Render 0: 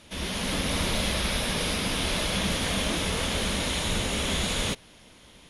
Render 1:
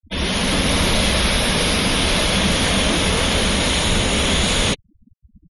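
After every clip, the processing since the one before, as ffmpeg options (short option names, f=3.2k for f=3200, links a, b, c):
-filter_complex "[0:a]afftfilt=real='re*gte(hypot(re,im),0.0126)':imag='im*gte(hypot(re,im),0.0126)':win_size=1024:overlap=0.75,asplit=2[a][b];[b]alimiter=limit=-22.5dB:level=0:latency=1,volume=-2.5dB[c];[a][c]amix=inputs=2:normalize=0,volume=6.5dB"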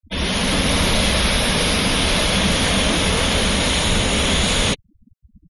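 -af "equalizer=f=350:t=o:w=0.23:g=-2.5"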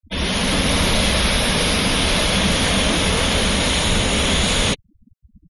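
-af anull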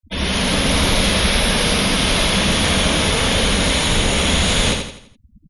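-af "aecho=1:1:83|166|249|332|415:0.531|0.218|0.0892|0.0366|0.015"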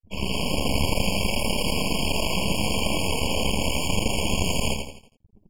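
-af "flanger=delay=8.4:depth=6.2:regen=67:speed=0.72:shape=triangular,aeval=exprs='max(val(0),0)':c=same,afftfilt=real='re*eq(mod(floor(b*sr/1024/1100),2),0)':imag='im*eq(mod(floor(b*sr/1024/1100),2),0)':win_size=1024:overlap=0.75,volume=2dB"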